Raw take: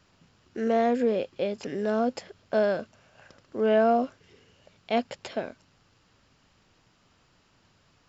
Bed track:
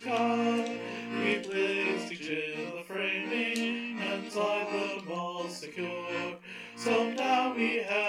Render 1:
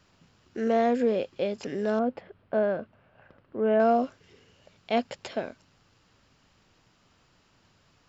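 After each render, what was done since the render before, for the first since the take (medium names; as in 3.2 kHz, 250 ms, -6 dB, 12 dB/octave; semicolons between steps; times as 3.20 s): 1.99–3.80 s: distance through air 490 m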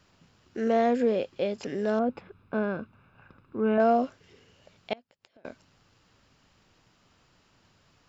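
2.09–3.78 s: comb 0.8 ms; 4.93–5.45 s: inverted gate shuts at -32 dBFS, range -30 dB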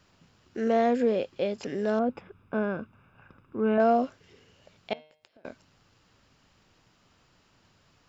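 2.12–3.60 s: Butterworth band-stop 4.2 kHz, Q 5.2; 4.92–5.49 s: de-hum 153.9 Hz, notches 39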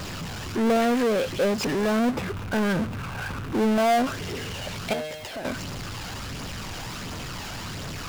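flange 1.4 Hz, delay 0.1 ms, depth 1.3 ms, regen +45%; power-law waveshaper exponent 0.35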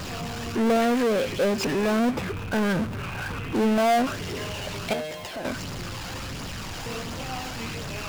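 add bed track -10 dB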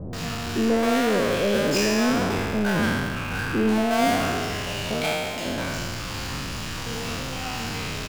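spectral sustain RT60 2.00 s; bands offset in time lows, highs 130 ms, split 630 Hz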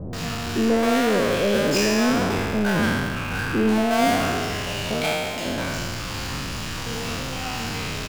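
trim +1.5 dB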